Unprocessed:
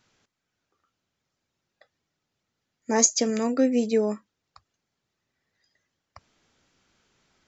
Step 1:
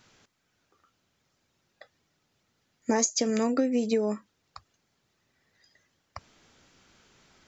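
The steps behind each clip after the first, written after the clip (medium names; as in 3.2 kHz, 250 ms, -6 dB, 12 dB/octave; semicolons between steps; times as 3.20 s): compression 10:1, threshold -29 dBFS, peak gain reduction 15.5 dB; trim +7 dB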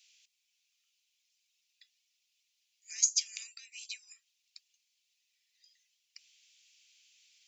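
elliptic high-pass 2.5 kHz, stop band 80 dB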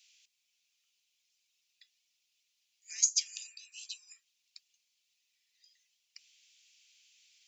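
spectral replace 3.32–4.04 s, 960–2500 Hz both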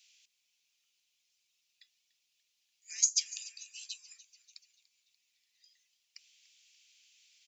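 frequency-shifting echo 291 ms, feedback 57%, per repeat -72 Hz, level -19.5 dB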